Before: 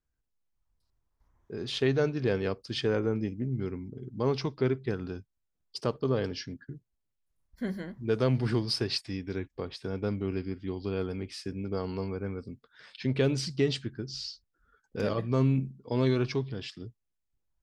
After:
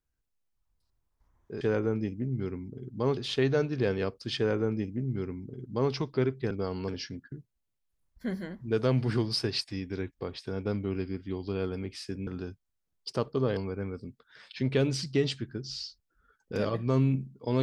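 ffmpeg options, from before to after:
-filter_complex "[0:a]asplit=7[a][b][c][d][e][f][g];[a]atrim=end=1.612[h];[b]atrim=start=2.808:end=4.372[i];[c]atrim=start=1.608:end=4.952[j];[d]atrim=start=11.638:end=12.012[k];[e]atrim=start=6.248:end=11.642[l];[f]atrim=start=4.948:end=6.252[m];[g]atrim=start=12.008[n];[h][i]acrossfade=d=0.004:c1=hsin:c2=hsin[o];[o][j]acrossfade=d=0.004:c1=hsin:c2=hsin[p];[p][k]acrossfade=d=0.004:c1=hsin:c2=hsin[q];[q][l]acrossfade=d=0.004:c1=hsin:c2=hsin[r];[r][m]acrossfade=d=0.004:c1=hsin:c2=hsin[s];[s][n]acrossfade=d=0.004:c1=hsin:c2=hsin"

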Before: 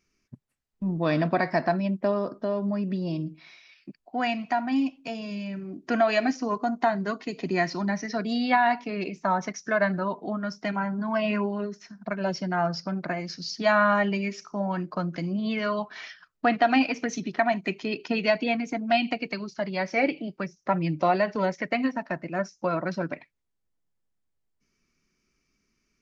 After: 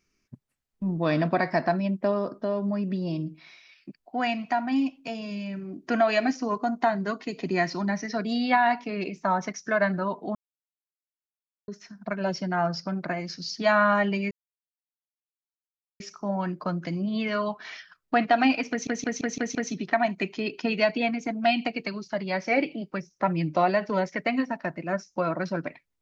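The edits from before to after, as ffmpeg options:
-filter_complex "[0:a]asplit=9[a][b][c][d][e][f][g][h][i];[a]atrim=end=10.35,asetpts=PTS-STARTPTS,afade=t=out:st=10.346:d=0.004:c=hsin[j];[b]atrim=start=10.35:end=11.68,asetpts=PTS-STARTPTS,volume=0[k];[c]atrim=start=11.68:end=14.31,asetpts=PTS-STARTPTS,afade=t=in:d=0.004:c=hsin,afade=t=out:st=2.626:d=0.004:c=hsin,apad=pad_dur=1.69[l];[d]atrim=start=14.31:end=17.182,asetpts=PTS-STARTPTS,afade=t=in:d=0.004:c=hsin[m];[e]atrim=start=17.008:end=17.182[n];[f]atrim=start=17.008:end=17.182[o];[g]atrim=start=17.008:end=17.182[p];[h]atrim=start=17.008:end=17.182[q];[i]atrim=start=17.008[r];[j][k][l][m]concat=n=4:v=0:a=1[s];[s][n]acrossfade=d=0.004:c1=hsin:c2=hsin[t];[t][o]acrossfade=d=0.004:c1=hsin:c2=hsin[u];[u][p]acrossfade=d=0.004:c1=hsin:c2=hsin[v];[v][q]acrossfade=d=0.004:c1=hsin:c2=hsin[w];[w][r]acrossfade=d=0.004:c1=hsin:c2=hsin"

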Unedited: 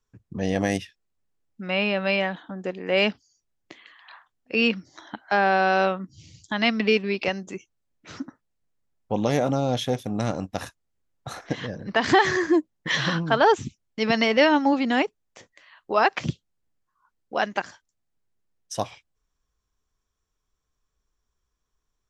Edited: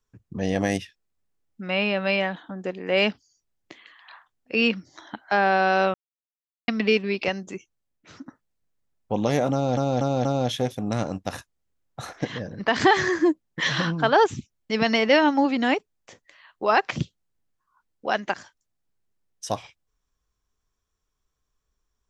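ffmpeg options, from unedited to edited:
-filter_complex "[0:a]asplit=7[a][b][c][d][e][f][g];[a]atrim=end=5.94,asetpts=PTS-STARTPTS,afade=t=out:st=5.936:d=0.004:c=hsin[h];[b]atrim=start=5.94:end=6.68,asetpts=PTS-STARTPTS,volume=0[i];[c]atrim=start=6.68:end=8.26,asetpts=PTS-STARTPTS,afade=t=in:d=0.004:c=hsin,afade=t=out:st=0.85:d=0.73:silence=0.354813[j];[d]atrim=start=8.26:end=9.772,asetpts=PTS-STARTPTS,afade=t=in:d=0.004:c=hsin:silence=0.354813[k];[e]atrim=start=9.528:end=9.772[l];[f]atrim=start=9.528:end=9.772[m];[g]atrim=start=9.528[n];[h][i][j][k]concat=n=4:v=0:a=1[o];[o][l]acrossfade=d=0.004:c1=hsin:c2=hsin[p];[p][m]acrossfade=d=0.004:c1=hsin:c2=hsin[q];[q][n]acrossfade=d=0.004:c1=hsin:c2=hsin"

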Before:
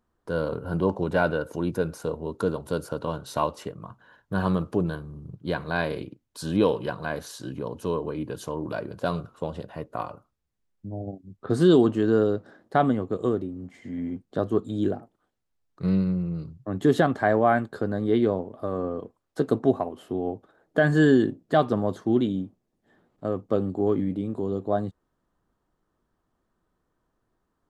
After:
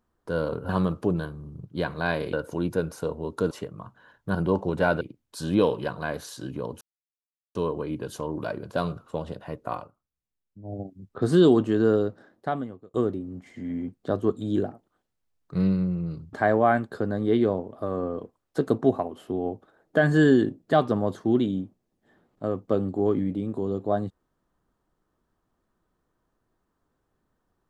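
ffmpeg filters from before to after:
-filter_complex "[0:a]asplit=11[a][b][c][d][e][f][g][h][i][j][k];[a]atrim=end=0.692[l];[b]atrim=start=4.388:end=6.032[m];[c]atrim=start=1.348:end=2.532[n];[d]atrim=start=3.548:end=4.392[o];[e]atrim=start=0.688:end=1.352[p];[f]atrim=start=6.028:end=7.83,asetpts=PTS-STARTPTS,afade=t=out:st=1.798:d=0.004:c=hsin,apad=pad_dur=0.74[q];[g]atrim=start=7.83:end=10.18,asetpts=PTS-STARTPTS,afade=t=in:d=0.004:c=hsin,afade=t=out:st=2.23:d=0.12:silence=0.334965[r];[h]atrim=start=10.18:end=10.9,asetpts=PTS-STARTPTS,volume=-9.5dB[s];[i]atrim=start=10.9:end=13.22,asetpts=PTS-STARTPTS,afade=t=in:d=0.12:silence=0.334965,afade=t=out:st=1.35:d=0.97[t];[j]atrim=start=13.22:end=16.612,asetpts=PTS-STARTPTS,afade=t=in:d=0.004:c=hsin[u];[k]atrim=start=17.138[v];[l][m]acrossfade=d=0.004:c1=hsin:c2=hsin[w];[w][n]acrossfade=d=0.004:c1=hsin:c2=hsin[x];[x][o]acrossfade=d=0.004:c1=hsin:c2=hsin[y];[y][p]acrossfade=d=0.004:c1=hsin:c2=hsin[z];[q][r][s][t][u]concat=n=5:v=0:a=1[aa];[z][aa]acrossfade=d=0.004:c1=hsin:c2=hsin[ab];[ab][v]acrossfade=d=0.004:c1=hsin:c2=hsin"

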